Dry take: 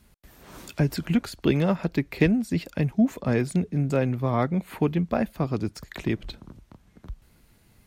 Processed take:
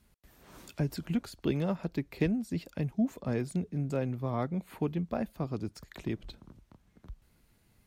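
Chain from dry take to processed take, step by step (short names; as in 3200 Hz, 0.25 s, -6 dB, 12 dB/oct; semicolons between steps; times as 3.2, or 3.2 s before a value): dynamic EQ 2000 Hz, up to -4 dB, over -46 dBFS, Q 1.1; gain -8 dB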